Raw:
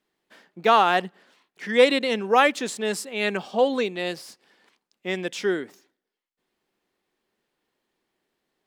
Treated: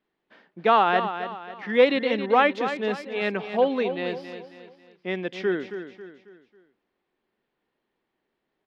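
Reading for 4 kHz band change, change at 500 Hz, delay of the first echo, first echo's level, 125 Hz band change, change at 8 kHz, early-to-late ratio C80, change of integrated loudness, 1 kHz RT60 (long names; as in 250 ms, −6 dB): −5.0 dB, −0.5 dB, 272 ms, −10.0 dB, +0.5 dB, below −20 dB, no reverb audible, −1.5 dB, no reverb audible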